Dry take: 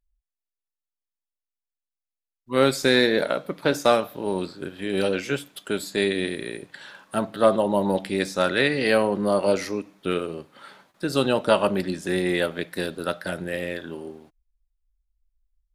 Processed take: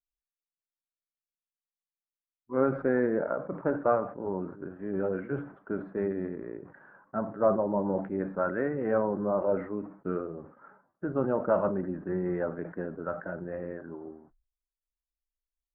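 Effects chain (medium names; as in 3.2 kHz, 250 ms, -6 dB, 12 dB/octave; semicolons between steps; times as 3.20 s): coarse spectral quantiser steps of 15 dB; gate -49 dBFS, range -18 dB; steep low-pass 1.5 kHz 36 dB/octave; decay stretcher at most 120 dB/s; trim -6 dB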